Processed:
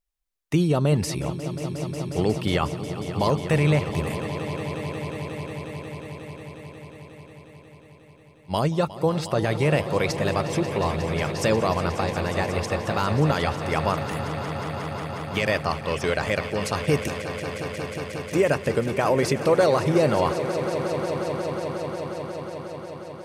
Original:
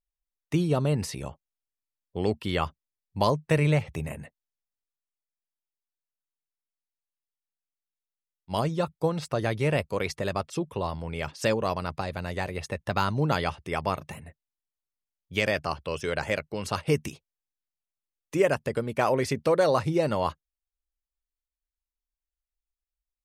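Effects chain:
brickwall limiter −15.5 dBFS, peak gain reduction 6 dB
echo that builds up and dies away 180 ms, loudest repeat 5, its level −13.5 dB
level +5 dB

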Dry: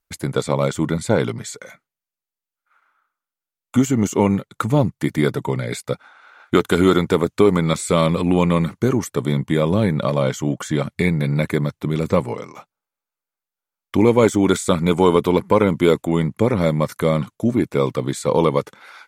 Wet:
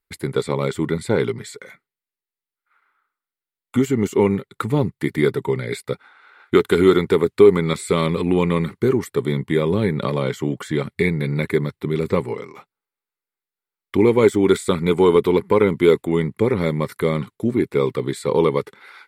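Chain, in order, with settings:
thirty-one-band graphic EQ 400 Hz +9 dB, 630 Hz −8 dB, 2,000 Hz +6 dB, 4,000 Hz +3 dB, 6,300 Hz −10 dB
0:10.02–0:10.60: multiband upward and downward compressor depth 70%
level −3 dB

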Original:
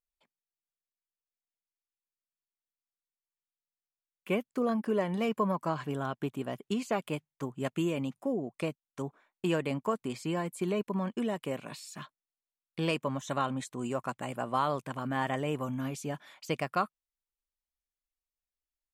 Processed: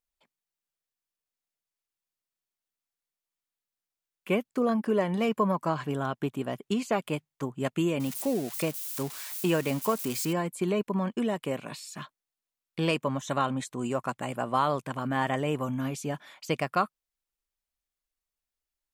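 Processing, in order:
0:08.00–0:10.33: spike at every zero crossing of −31 dBFS
level +3.5 dB

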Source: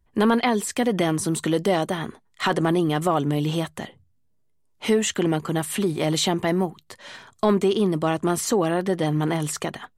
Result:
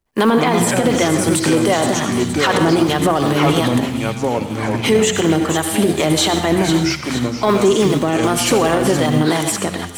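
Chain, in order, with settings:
mu-law and A-law mismatch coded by A
two-band tremolo in antiphase 2.6 Hz, depth 50%, crossover 570 Hz
in parallel at −7 dB: hard clipping −21.5 dBFS, distortion −11 dB
on the sum: low-shelf EQ 140 Hz −9.5 dB
mains-hum notches 60/120/180/240/300/360 Hz
delay with pitch and tempo change per echo 138 ms, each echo −5 semitones, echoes 3, each echo −6 dB
delay with a high-pass on its return 469 ms, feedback 49%, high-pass 2,800 Hz, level −8 dB
convolution reverb RT60 0.70 s, pre-delay 67 ms, DRR 8 dB
boost into a limiter +16 dB
expander for the loud parts 1.5 to 1, over −23 dBFS
level −3.5 dB

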